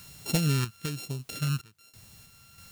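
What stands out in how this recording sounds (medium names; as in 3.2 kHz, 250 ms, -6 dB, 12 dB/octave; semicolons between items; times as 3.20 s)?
a buzz of ramps at a fixed pitch in blocks of 32 samples; phasing stages 2, 1.1 Hz, lowest notch 620–1400 Hz; a quantiser's noise floor 10-bit, dither triangular; random-step tremolo 3.1 Hz, depth 95%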